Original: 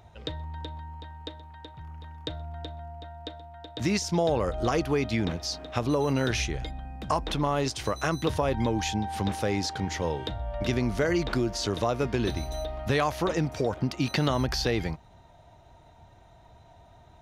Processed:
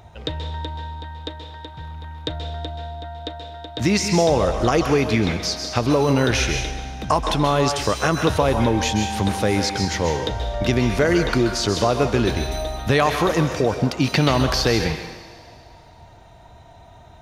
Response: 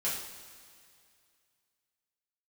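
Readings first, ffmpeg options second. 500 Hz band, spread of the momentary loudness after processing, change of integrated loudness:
+8.0 dB, 15 LU, +8.0 dB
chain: -filter_complex "[0:a]asplit=2[link_01][link_02];[1:a]atrim=start_sample=2205,lowshelf=frequency=430:gain=-11.5,adelay=128[link_03];[link_02][link_03]afir=irnorm=-1:irlink=0,volume=-9dB[link_04];[link_01][link_04]amix=inputs=2:normalize=0,volume=7.5dB"

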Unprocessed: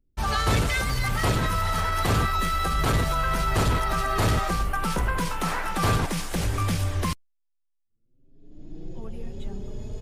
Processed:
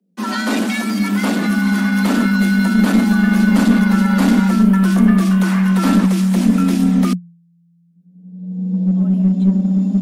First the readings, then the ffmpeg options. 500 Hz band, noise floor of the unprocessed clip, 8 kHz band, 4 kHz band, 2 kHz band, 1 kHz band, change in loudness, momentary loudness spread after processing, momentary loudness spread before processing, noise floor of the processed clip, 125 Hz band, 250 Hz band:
+3.5 dB, −73 dBFS, +2.5 dB, +3.0 dB, +7.5 dB, +0.5 dB, +10.5 dB, 6 LU, 15 LU, −54 dBFS, +8.5 dB, +21.5 dB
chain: -filter_complex "[0:a]asubboost=boost=6:cutoff=76,afreqshift=170,asplit=2[link_01][link_02];[link_02]aeval=exprs='clip(val(0),-1,0.168)':channel_layout=same,volume=-3.5dB[link_03];[link_01][link_03]amix=inputs=2:normalize=0,volume=-1.5dB"

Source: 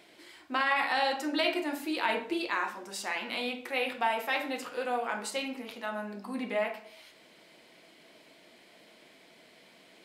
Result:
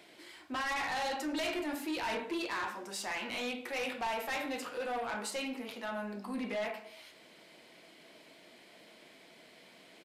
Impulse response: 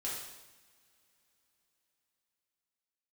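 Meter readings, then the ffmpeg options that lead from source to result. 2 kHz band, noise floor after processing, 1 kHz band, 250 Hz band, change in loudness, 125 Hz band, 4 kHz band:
−5.5 dB, −59 dBFS, −5.5 dB, −3.0 dB, −5.0 dB, can't be measured, −5.0 dB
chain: -filter_complex "[0:a]acrossover=split=150[link_01][link_02];[link_02]asoftclip=type=tanh:threshold=-31.5dB[link_03];[link_01][link_03]amix=inputs=2:normalize=0,aresample=32000,aresample=44100"

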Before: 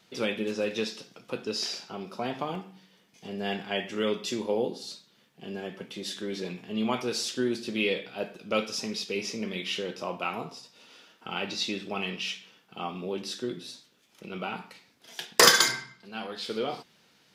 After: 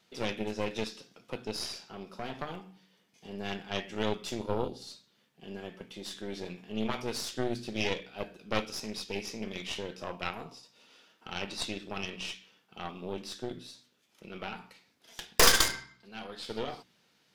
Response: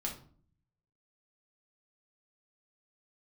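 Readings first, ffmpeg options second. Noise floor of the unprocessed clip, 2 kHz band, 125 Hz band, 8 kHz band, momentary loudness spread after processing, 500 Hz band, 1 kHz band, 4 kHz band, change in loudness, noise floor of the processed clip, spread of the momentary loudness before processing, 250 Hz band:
−64 dBFS, −5.0 dB, −0.5 dB, −3.5 dB, 13 LU, −5.0 dB, −4.0 dB, −4.5 dB, −4.0 dB, −70 dBFS, 12 LU, −5.0 dB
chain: -af "aeval=exprs='0.75*(cos(1*acos(clip(val(0)/0.75,-1,1)))-cos(1*PI/2))+0.188*(cos(8*acos(clip(val(0)/0.75,-1,1)))-cos(8*PI/2))':channel_layout=same,bandreject=frequency=61.57:width_type=h:width=4,bandreject=frequency=123.14:width_type=h:width=4,bandreject=frequency=184.71:width_type=h:width=4,bandreject=frequency=246.28:width_type=h:width=4,bandreject=frequency=307.85:width_type=h:width=4,volume=-6dB"

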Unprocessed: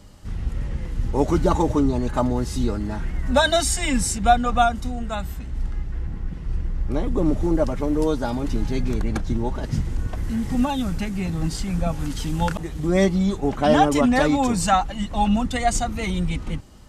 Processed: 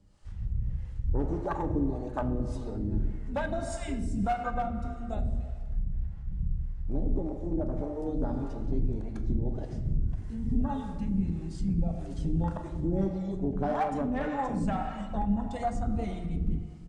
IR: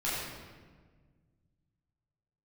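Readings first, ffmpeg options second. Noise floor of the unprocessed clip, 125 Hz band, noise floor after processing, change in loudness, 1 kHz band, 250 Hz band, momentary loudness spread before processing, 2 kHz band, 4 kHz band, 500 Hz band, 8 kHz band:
−33 dBFS, −6.5 dB, −39 dBFS, −9.5 dB, −12.0 dB, −9.0 dB, 12 LU, −15.0 dB, below −20 dB, −11.5 dB, below −20 dB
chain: -filter_complex "[0:a]bandreject=frequency=60:width_type=h:width=6,bandreject=frequency=120:width_type=h:width=6,bandreject=frequency=180:width_type=h:width=6,bandreject=frequency=240:width_type=h:width=6,afwtdn=0.0794,acontrast=30,aresample=22050,aresample=44100,asoftclip=type=hard:threshold=-6.5dB,acompressor=threshold=-23dB:ratio=5,asplit=2[link_01][link_02];[1:a]atrim=start_sample=2205[link_03];[link_02][link_03]afir=irnorm=-1:irlink=0,volume=-11dB[link_04];[link_01][link_04]amix=inputs=2:normalize=0,acrossover=split=470[link_05][link_06];[link_05]aeval=exprs='val(0)*(1-0.7/2+0.7/2*cos(2*PI*1.7*n/s))':channel_layout=same[link_07];[link_06]aeval=exprs='val(0)*(1-0.7/2-0.7/2*cos(2*PI*1.7*n/s))':channel_layout=same[link_08];[link_07][link_08]amix=inputs=2:normalize=0,volume=-4dB"

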